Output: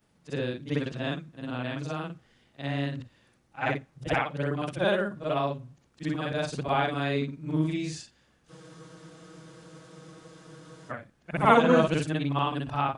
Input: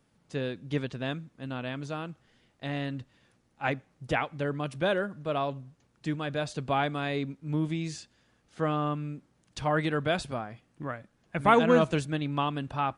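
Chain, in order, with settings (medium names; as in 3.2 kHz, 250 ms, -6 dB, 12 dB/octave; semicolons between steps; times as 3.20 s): short-time spectra conjugated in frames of 128 ms; spectral freeze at 8.53 s, 2.38 s; trim +5 dB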